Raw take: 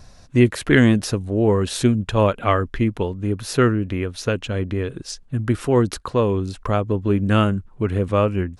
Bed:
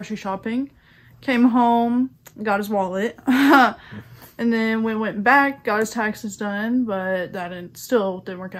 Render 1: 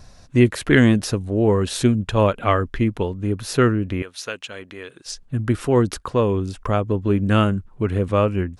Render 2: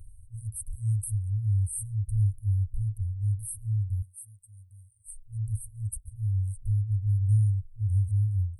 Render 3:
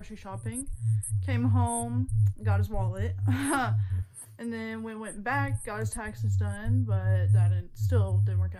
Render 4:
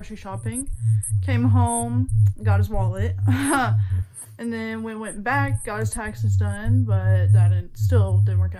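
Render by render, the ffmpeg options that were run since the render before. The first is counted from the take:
-filter_complex "[0:a]asettb=1/sr,asplit=3[s0][s1][s2];[s0]atrim=end=4.024[s3];[s1]atrim=start=4.02:end=5.06,asetpts=PTS-STARTPTS,afade=t=in:d=0.004:c=qsin,afade=t=out:st=1.036:d=0.004:c=qsin,highpass=f=1400:p=1[s4];[s2]atrim=start=5.056[s5];[s3][s4]acrossfade=d=0.004:c1=hsin:c2=qsin[s6];[s6][s5]acrossfade=d=0.004:c1=qsin:c2=hsin,asettb=1/sr,asplit=3[s7][s8][s9];[s7]atrim=end=5.934[s10];[s8]atrim=start=5.93:end=6.9,asetpts=PTS-STARTPTS,afade=t=in:d=0.004:c=qsin,afade=t=out:st=0.966:d=0.004:c=qsin,bandreject=f=4100:w=11[s11];[s9]atrim=start=6.896[s12];[s10][s11]acrossfade=d=0.004:c1=hsin:c2=qsin[s13];[s13][s12]acrossfade=d=0.004:c1=qsin:c2=hsin"
-af "afftfilt=real='re*(1-between(b*sr/4096,110,8100))':imag='im*(1-between(b*sr/4096,110,8100))':win_size=4096:overlap=0.75"
-filter_complex "[1:a]volume=0.178[s0];[0:a][s0]amix=inputs=2:normalize=0"
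-af "volume=2.24"

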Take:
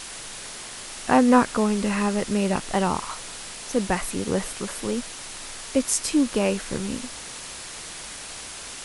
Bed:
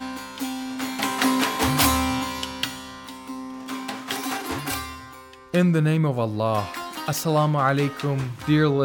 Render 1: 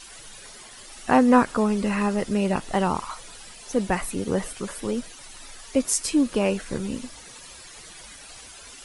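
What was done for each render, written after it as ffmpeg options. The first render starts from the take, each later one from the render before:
-af "afftdn=nr=12:nf=-38"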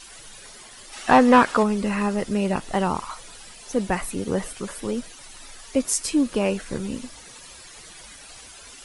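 -filter_complex "[0:a]asplit=3[s0][s1][s2];[s0]afade=t=out:st=0.92:d=0.02[s3];[s1]asplit=2[s4][s5];[s5]highpass=f=720:p=1,volume=5.62,asoftclip=type=tanh:threshold=0.668[s6];[s4][s6]amix=inputs=2:normalize=0,lowpass=f=3700:p=1,volume=0.501,afade=t=in:st=0.92:d=0.02,afade=t=out:st=1.62:d=0.02[s7];[s2]afade=t=in:st=1.62:d=0.02[s8];[s3][s7][s8]amix=inputs=3:normalize=0"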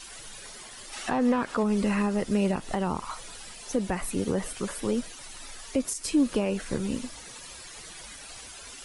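-filter_complex "[0:a]alimiter=limit=0.178:level=0:latency=1:release=161,acrossover=split=480[s0][s1];[s1]acompressor=threshold=0.0251:ratio=2[s2];[s0][s2]amix=inputs=2:normalize=0"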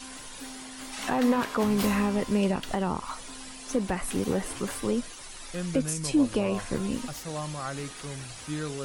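-filter_complex "[1:a]volume=0.188[s0];[0:a][s0]amix=inputs=2:normalize=0"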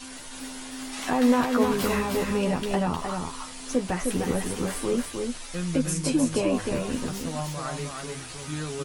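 -filter_complex "[0:a]asplit=2[s0][s1];[s1]adelay=12,volume=0.562[s2];[s0][s2]amix=inputs=2:normalize=0,aecho=1:1:308:0.596"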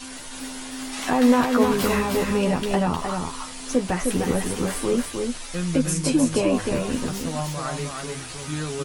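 -af "volume=1.5"

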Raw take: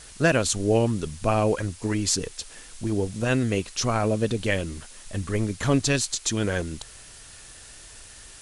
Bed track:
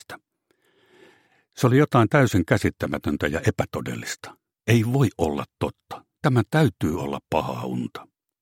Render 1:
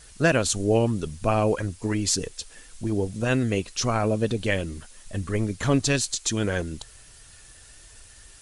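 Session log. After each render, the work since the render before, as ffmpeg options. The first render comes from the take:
-af "afftdn=nr=6:nf=-46"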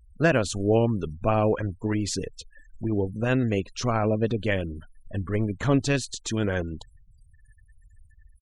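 -af "afftfilt=real='re*gte(hypot(re,im),0.01)':imag='im*gte(hypot(re,im),0.01)':win_size=1024:overlap=0.75,lowpass=f=2700:p=1"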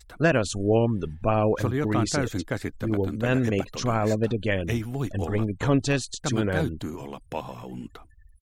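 -filter_complex "[1:a]volume=0.335[s0];[0:a][s0]amix=inputs=2:normalize=0"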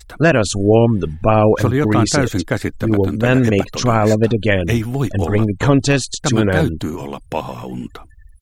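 -af "volume=3.16,alimiter=limit=0.794:level=0:latency=1"

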